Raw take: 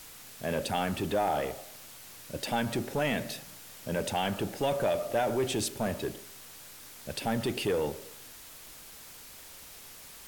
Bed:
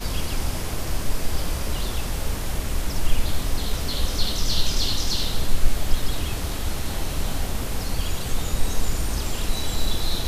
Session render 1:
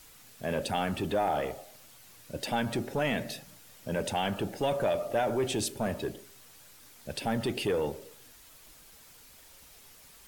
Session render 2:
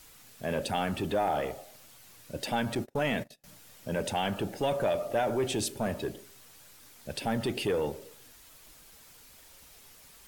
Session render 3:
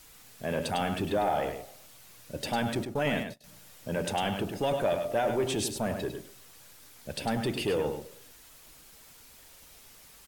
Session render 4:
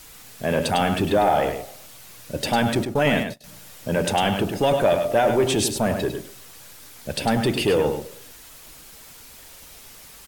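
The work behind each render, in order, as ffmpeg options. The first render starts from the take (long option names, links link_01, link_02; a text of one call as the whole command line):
ffmpeg -i in.wav -af "afftdn=noise_reduction=7:noise_floor=-49" out.wav
ffmpeg -i in.wav -filter_complex "[0:a]asettb=1/sr,asplit=3[link_01][link_02][link_03];[link_01]atrim=end=2.754[link_04];[link_02]atrim=start=2.75:end=3.44,asetpts=PTS-STARTPTS,afade=type=in:duration=0.004:curve=qsin,afade=type=out:start_time=0.686:duration=0.004:curve=qsin,agate=range=-33dB:threshold=-37dB:ratio=16:release=100:detection=peak[link_05];[link_03]atrim=start=3.436[link_06];[link_04][link_05]acrossfade=duration=0.004:curve1=hsin:curve2=qsin[link_07];[link_07][link_06]acrossfade=duration=0.004:curve1=qsin:curve2=hsin" out.wav
ffmpeg -i in.wav -af "aecho=1:1:102:0.447" out.wav
ffmpeg -i in.wav -af "volume=9dB" out.wav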